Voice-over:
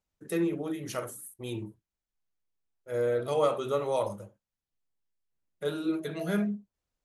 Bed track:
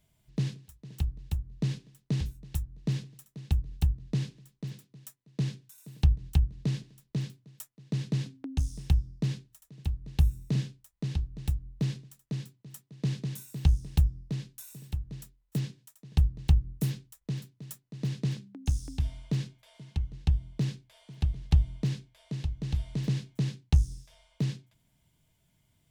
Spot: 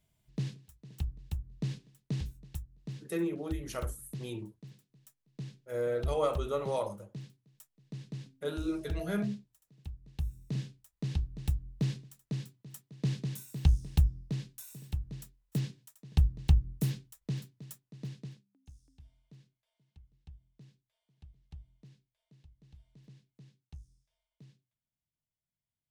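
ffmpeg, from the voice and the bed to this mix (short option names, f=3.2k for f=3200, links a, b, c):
-filter_complex "[0:a]adelay=2800,volume=-4dB[a];[1:a]volume=5.5dB,afade=t=out:st=2.45:d=0.22:silence=0.446684,afade=t=in:st=10.2:d=0.95:silence=0.298538,afade=t=out:st=17.4:d=1.05:silence=0.0562341[b];[a][b]amix=inputs=2:normalize=0"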